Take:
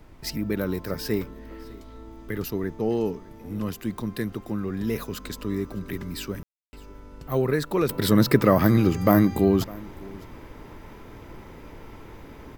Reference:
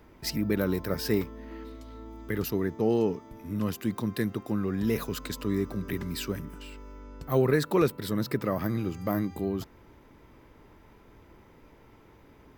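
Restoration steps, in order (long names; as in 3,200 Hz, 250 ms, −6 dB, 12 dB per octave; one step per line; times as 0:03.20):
ambience match 0:06.43–0:06.73
noise reduction from a noise print 11 dB
echo removal 606 ms −22 dB
level 0 dB, from 0:07.89 −11 dB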